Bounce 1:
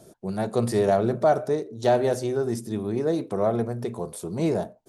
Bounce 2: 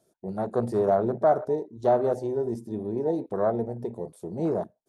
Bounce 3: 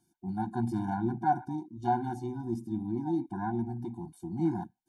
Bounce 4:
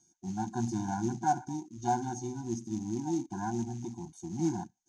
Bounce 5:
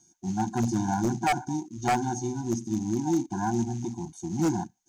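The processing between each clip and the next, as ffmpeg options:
ffmpeg -i in.wav -af "afwtdn=0.0355,lowshelf=frequency=240:gain=-7" out.wav
ffmpeg -i in.wav -af "afftfilt=real='re*eq(mod(floor(b*sr/1024/350),2),0)':imag='im*eq(mod(floor(b*sr/1024/350),2),0)':win_size=1024:overlap=0.75" out.wav
ffmpeg -i in.wav -af "acrusher=bits=7:mode=log:mix=0:aa=0.000001,lowpass=frequency=6400:width_type=q:width=15,volume=-1.5dB" out.wav
ffmpeg -i in.wav -af "aeval=exprs='0.0631*(abs(mod(val(0)/0.0631+3,4)-2)-1)':channel_layout=same,volume=6.5dB" out.wav

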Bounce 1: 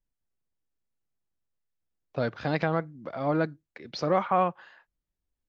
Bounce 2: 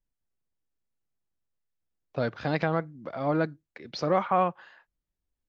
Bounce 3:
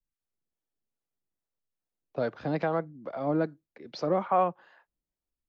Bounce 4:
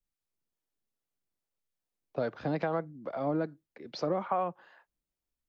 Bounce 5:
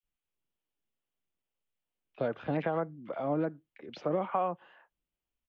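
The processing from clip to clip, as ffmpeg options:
ffmpeg -i in.wav -af anull out.wav
ffmpeg -i in.wav -filter_complex "[0:a]acrossover=split=190|1000|1500[link_01][link_02][link_03][link_04];[link_02]dynaudnorm=framelen=120:gausssize=5:maxgain=7.5dB[link_05];[link_01][link_05][link_03][link_04]amix=inputs=4:normalize=0,acrossover=split=420[link_06][link_07];[link_06]aeval=exprs='val(0)*(1-0.5/2+0.5/2*cos(2*PI*2.4*n/s))':channel_layout=same[link_08];[link_07]aeval=exprs='val(0)*(1-0.5/2-0.5/2*cos(2*PI*2.4*n/s))':channel_layout=same[link_09];[link_08][link_09]amix=inputs=2:normalize=0,volume=-5dB" out.wav
ffmpeg -i in.wav -af "acompressor=threshold=-26dB:ratio=6" out.wav
ffmpeg -i in.wav -filter_complex "[0:a]highshelf=frequency=3700:width_type=q:width=3:gain=-7,acrossover=split=1900[link_01][link_02];[link_01]adelay=30[link_03];[link_03][link_02]amix=inputs=2:normalize=0" out.wav

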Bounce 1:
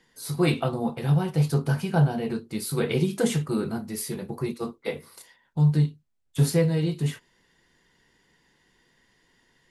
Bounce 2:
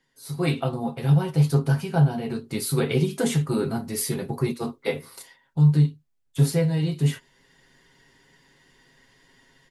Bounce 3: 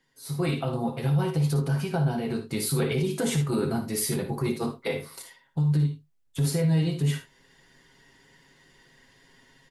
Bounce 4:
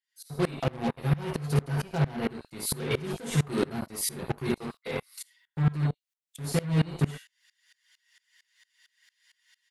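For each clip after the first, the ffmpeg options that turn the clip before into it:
ffmpeg -i in.wav -af "aecho=1:1:7.4:0.51,dynaudnorm=framelen=210:gausssize=3:maxgain=13.5dB,volume=-8.5dB" out.wav
ffmpeg -i in.wav -filter_complex "[0:a]alimiter=limit=-18.5dB:level=0:latency=1:release=15,asplit=2[link_01][link_02];[link_02]aecho=0:1:56|75:0.316|0.211[link_03];[link_01][link_03]amix=inputs=2:normalize=0" out.wav
ffmpeg -i in.wav -filter_complex "[0:a]acrossover=split=1600[link_01][link_02];[link_01]acrusher=bits=4:mix=0:aa=0.5[link_03];[link_03][link_02]amix=inputs=2:normalize=0,aeval=exprs='val(0)*pow(10,-24*if(lt(mod(-4.4*n/s,1),2*abs(-4.4)/1000),1-mod(-4.4*n/s,1)/(2*abs(-4.4)/1000),(mod(-4.4*n/s,1)-2*abs(-4.4)/1000)/(1-2*abs(-4.4)/1000))/20)':channel_layout=same,volume=4dB" out.wav

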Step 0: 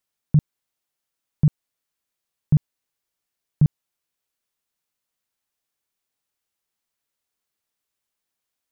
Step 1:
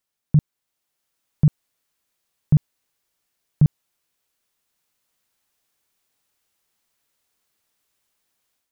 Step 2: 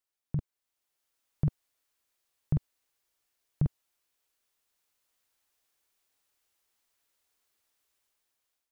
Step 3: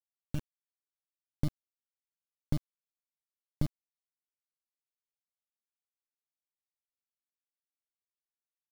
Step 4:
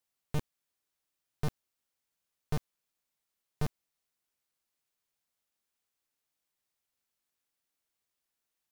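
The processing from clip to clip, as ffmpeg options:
ffmpeg -i in.wav -af "dynaudnorm=framelen=570:gausssize=3:maxgain=9dB,alimiter=limit=-8dB:level=0:latency=1:release=16" out.wav
ffmpeg -i in.wav -af "equalizer=frequency=170:width=1.9:gain=-11,dynaudnorm=framelen=110:gausssize=13:maxgain=3.5dB,volume=-7.5dB" out.wav
ffmpeg -i in.wav -af "acrusher=bits=4:dc=4:mix=0:aa=0.000001" out.wav
ffmpeg -i in.wav -af "volume=33.5dB,asoftclip=hard,volume=-33.5dB,volume=10dB" out.wav

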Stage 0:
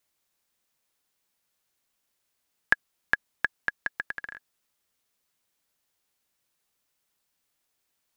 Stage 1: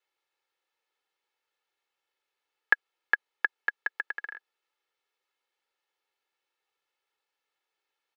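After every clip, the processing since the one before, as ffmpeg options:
ffmpeg -i in.wav -filter_complex "[0:a]acrossover=split=330 4100:gain=0.0794 1 0.126[link_01][link_02][link_03];[link_01][link_02][link_03]amix=inputs=3:normalize=0,aecho=1:1:2.3:0.68,volume=-2dB" out.wav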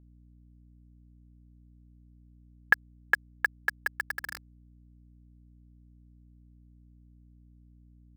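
ffmpeg -i in.wav -af "acrusher=bits=5:mix=0:aa=0.000001,aeval=exprs='val(0)+0.00178*(sin(2*PI*60*n/s)+sin(2*PI*2*60*n/s)/2+sin(2*PI*3*60*n/s)/3+sin(2*PI*4*60*n/s)/4+sin(2*PI*5*60*n/s)/5)':channel_layout=same" out.wav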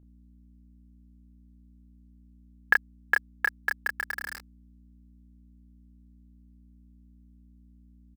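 ffmpeg -i in.wav -filter_complex "[0:a]asplit=2[link_01][link_02];[link_02]adelay=29,volume=-3dB[link_03];[link_01][link_03]amix=inputs=2:normalize=0" out.wav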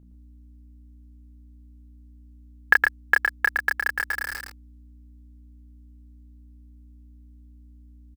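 ffmpeg -i in.wav -af "aecho=1:1:114:0.596,volume=4.5dB" out.wav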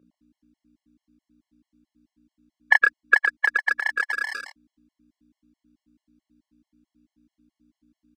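ffmpeg -i in.wav -af "highpass=370,lowpass=6000,afftfilt=real='re*gt(sin(2*PI*4.6*pts/sr)*(1-2*mod(floor(b*sr/1024/560),2)),0)':imag='im*gt(sin(2*PI*4.6*pts/sr)*(1-2*mod(floor(b*sr/1024/560),2)),0)':win_size=1024:overlap=0.75,volume=5.5dB" out.wav

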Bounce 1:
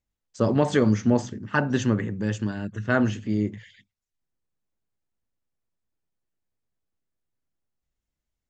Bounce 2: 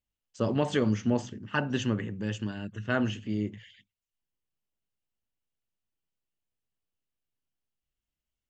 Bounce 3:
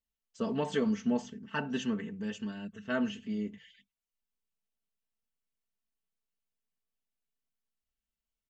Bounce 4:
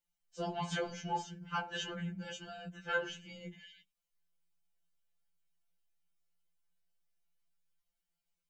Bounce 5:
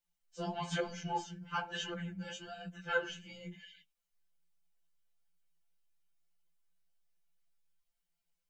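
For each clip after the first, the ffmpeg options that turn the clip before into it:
ffmpeg -i in.wav -af "equalizer=frequency=2900:width=3.9:gain=9.5,volume=-6dB" out.wav
ffmpeg -i in.wav -af "aecho=1:1:4.5:0.9,volume=-7dB" out.wav
ffmpeg -i in.wav -af "afftfilt=real='re*2.83*eq(mod(b,8),0)':imag='im*2.83*eq(mod(b,8),0)':win_size=2048:overlap=0.75,volume=4dB" out.wav
ffmpeg -i in.wav -af "flanger=delay=4:depth=7.2:regen=42:speed=1.1:shape=triangular,volume=4dB" out.wav

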